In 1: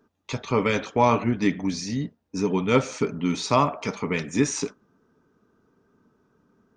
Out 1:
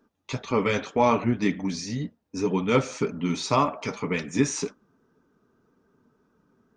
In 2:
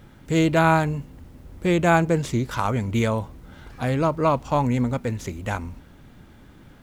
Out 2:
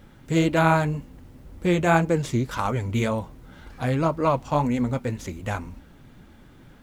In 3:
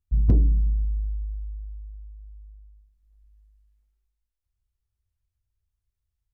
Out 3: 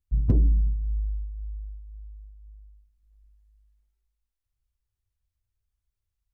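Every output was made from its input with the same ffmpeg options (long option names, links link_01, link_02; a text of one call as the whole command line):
ffmpeg -i in.wav -af "flanger=delay=3.5:depth=4.7:regen=-44:speed=1.9:shape=sinusoidal,volume=2.5dB" out.wav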